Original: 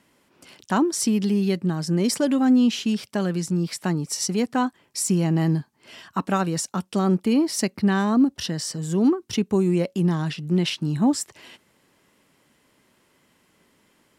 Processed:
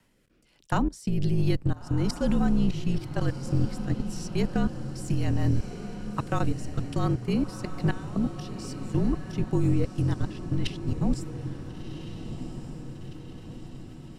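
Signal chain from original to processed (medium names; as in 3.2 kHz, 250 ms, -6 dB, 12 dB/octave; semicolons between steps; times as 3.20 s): octave divider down 2 oct, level +2 dB; 7.06–8.75 s: high-pass 210 Hz 6 dB/octave; frequency shift -43 Hz; level held to a coarse grid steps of 21 dB; rotary cabinet horn 1.1 Hz, later 8 Hz, at 9.44 s; on a send: echo that smears into a reverb 1414 ms, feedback 58%, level -10 dB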